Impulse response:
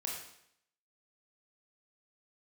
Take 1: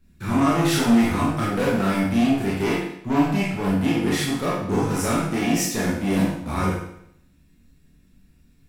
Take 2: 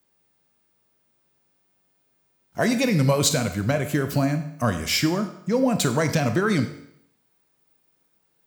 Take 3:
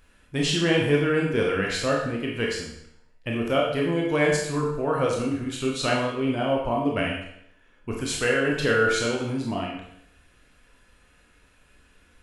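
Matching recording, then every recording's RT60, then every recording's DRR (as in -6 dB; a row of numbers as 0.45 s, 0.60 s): 3; 0.70 s, 0.70 s, 0.70 s; -7.0 dB, 7.5 dB, -2.5 dB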